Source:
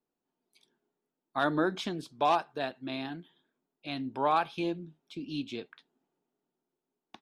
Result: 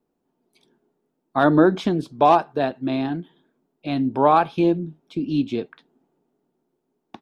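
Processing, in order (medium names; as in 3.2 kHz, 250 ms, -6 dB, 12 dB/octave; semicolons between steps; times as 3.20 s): tilt shelf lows +6.5 dB, about 1.2 kHz; trim +8.5 dB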